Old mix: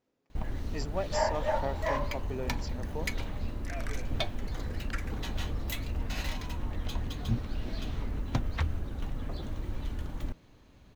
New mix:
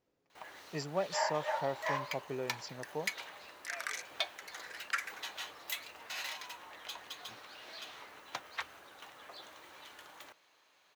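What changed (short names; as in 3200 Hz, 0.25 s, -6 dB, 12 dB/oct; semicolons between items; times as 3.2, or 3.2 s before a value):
first sound: add HPF 900 Hz 12 dB/oct; second sound +6.0 dB; master: add bell 240 Hz -11.5 dB 0.21 oct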